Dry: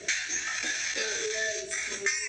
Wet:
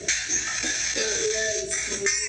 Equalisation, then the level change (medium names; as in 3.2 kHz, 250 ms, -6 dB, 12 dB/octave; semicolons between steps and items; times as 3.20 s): tone controls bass +1 dB, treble +9 dB; tilt shelf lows +4.5 dB, about 920 Hz; bass shelf 160 Hz +5 dB; +4.0 dB